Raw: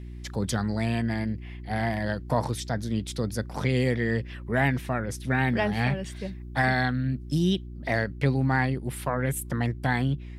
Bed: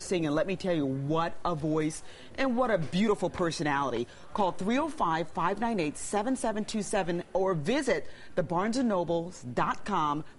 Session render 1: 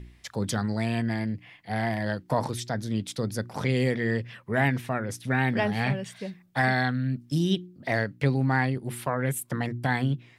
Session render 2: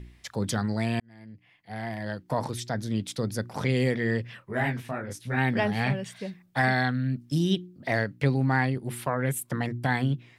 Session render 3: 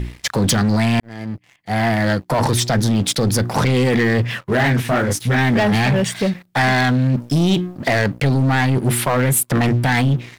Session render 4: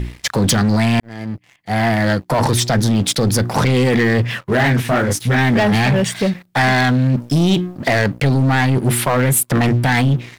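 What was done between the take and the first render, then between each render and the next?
de-hum 60 Hz, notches 6
1.00–2.80 s: fade in; 4.40–5.36 s: detune thickener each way 60 cents -> 45 cents
in parallel at -1 dB: compressor with a negative ratio -30 dBFS, ratio -0.5; on the sum: waveshaping leveller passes 3
trim +1.5 dB

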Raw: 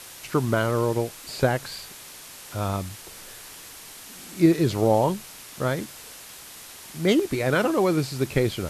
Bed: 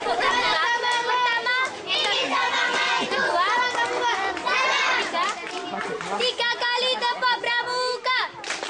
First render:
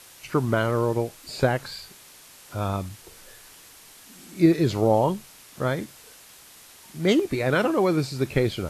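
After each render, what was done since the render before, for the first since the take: noise print and reduce 6 dB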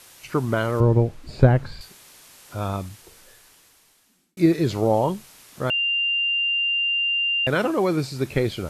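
0.80–1.81 s: RIAA curve playback; 2.83–4.37 s: fade out linear; 5.70–7.47 s: bleep 2.79 kHz -19.5 dBFS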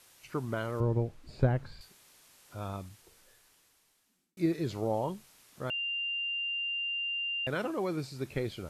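trim -11.5 dB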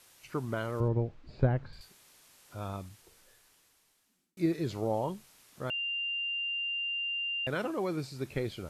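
0.88–1.73 s: distance through air 140 m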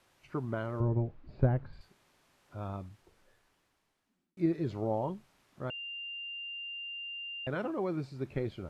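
low-pass 1.3 kHz 6 dB/octave; band-stop 470 Hz, Q 12

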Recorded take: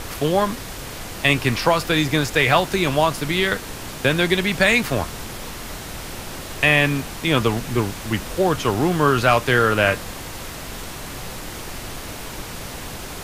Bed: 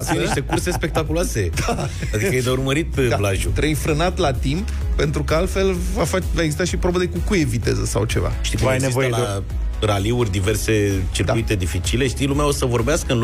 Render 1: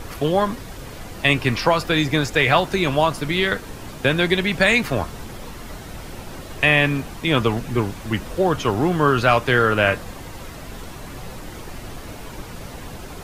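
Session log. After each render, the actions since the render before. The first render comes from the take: noise reduction 8 dB, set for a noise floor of -34 dBFS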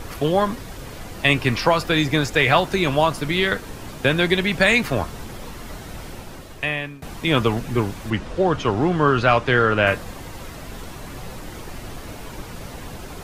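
6.04–7.02 s: fade out, to -22 dB; 8.10–9.87 s: distance through air 71 m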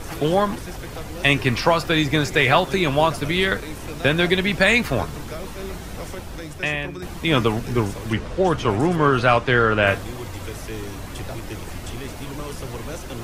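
add bed -16 dB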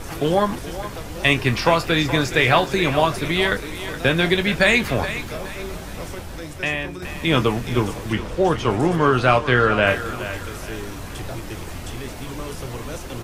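doubling 24 ms -11.5 dB; thinning echo 421 ms, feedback 38%, level -11.5 dB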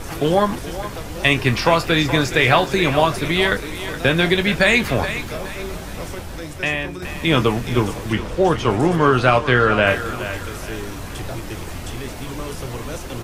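trim +2 dB; peak limiter -3 dBFS, peak gain reduction 3 dB

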